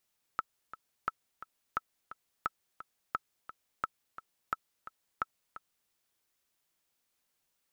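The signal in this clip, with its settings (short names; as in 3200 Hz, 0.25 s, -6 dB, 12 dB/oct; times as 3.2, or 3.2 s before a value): metronome 174 bpm, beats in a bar 2, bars 8, 1310 Hz, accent 14 dB -17 dBFS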